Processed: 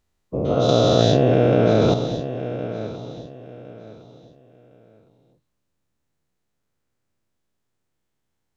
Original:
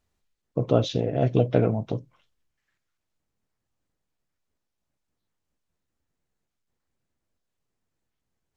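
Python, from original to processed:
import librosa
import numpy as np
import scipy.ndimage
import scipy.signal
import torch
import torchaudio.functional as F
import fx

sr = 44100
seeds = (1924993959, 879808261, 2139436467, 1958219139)

y = fx.spec_dilate(x, sr, span_ms=480)
y = fx.echo_feedback(y, sr, ms=1061, feedback_pct=25, wet_db=-10.0)
y = fx.env_flatten(y, sr, amount_pct=100, at=(0.68, 1.94))
y = y * librosa.db_to_amplitude(-3.0)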